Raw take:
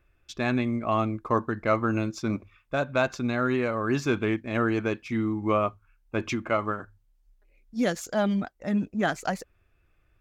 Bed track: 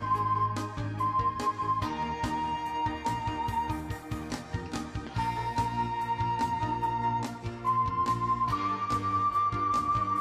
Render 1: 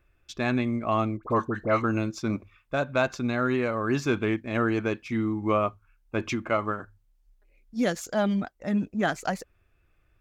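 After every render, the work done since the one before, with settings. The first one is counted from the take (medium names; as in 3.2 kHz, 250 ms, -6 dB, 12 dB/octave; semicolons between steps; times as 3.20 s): 1.17–1.84 s: phase dispersion highs, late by 62 ms, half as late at 1.5 kHz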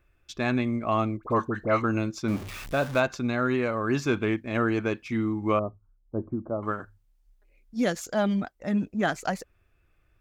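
2.28–3.00 s: jump at every zero crossing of -33.5 dBFS; 5.59–6.63 s: Gaussian low-pass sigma 11 samples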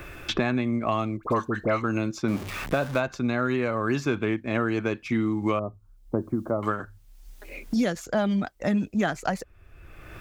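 three bands compressed up and down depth 100%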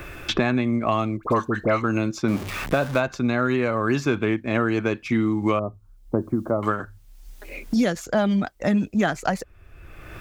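trim +3.5 dB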